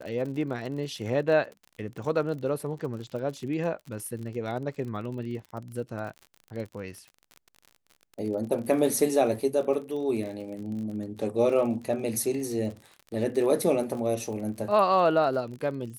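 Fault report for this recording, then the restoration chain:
crackle 43/s -36 dBFS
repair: de-click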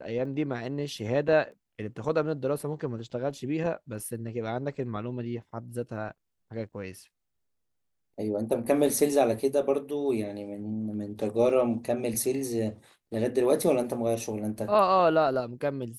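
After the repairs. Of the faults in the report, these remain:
none

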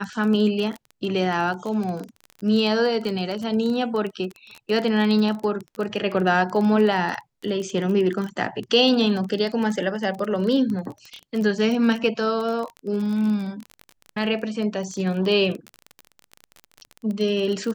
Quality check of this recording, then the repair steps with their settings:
crackle 23/s -27 dBFS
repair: de-click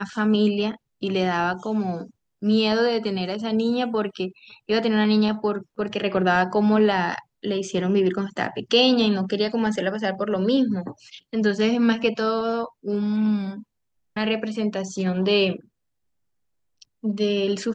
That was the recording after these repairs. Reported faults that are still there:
none

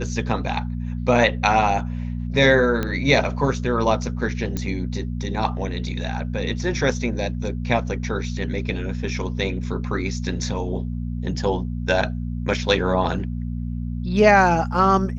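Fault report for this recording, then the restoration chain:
hum 60 Hz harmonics 4 -27 dBFS
2.83 pop -11 dBFS
4.57 pop -13 dBFS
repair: de-click; de-hum 60 Hz, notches 4

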